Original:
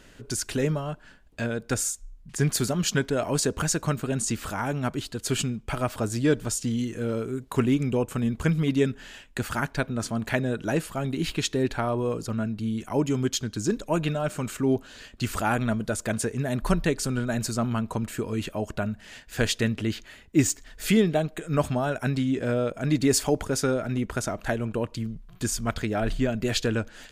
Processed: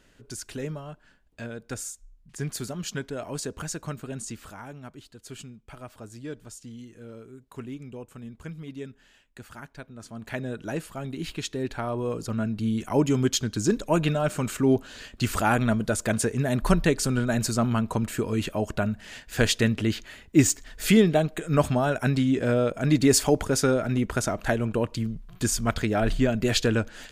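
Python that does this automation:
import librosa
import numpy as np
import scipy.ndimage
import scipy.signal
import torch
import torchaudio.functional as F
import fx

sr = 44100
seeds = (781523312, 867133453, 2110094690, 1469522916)

y = fx.gain(x, sr, db=fx.line((4.19, -8.0), (4.87, -15.0), (9.95, -15.0), (10.43, -5.5), (11.57, -5.5), (12.68, 2.5)))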